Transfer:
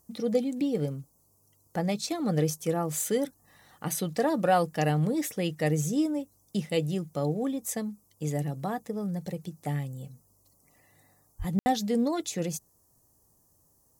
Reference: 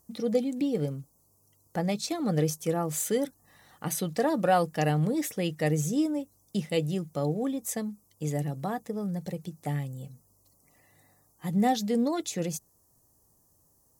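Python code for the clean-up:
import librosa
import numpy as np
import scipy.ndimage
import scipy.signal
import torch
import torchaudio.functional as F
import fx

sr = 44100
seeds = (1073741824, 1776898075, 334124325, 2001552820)

y = fx.highpass(x, sr, hz=140.0, slope=24, at=(11.38, 11.5), fade=0.02)
y = fx.fix_ambience(y, sr, seeds[0], print_start_s=12.65, print_end_s=13.15, start_s=11.59, end_s=11.66)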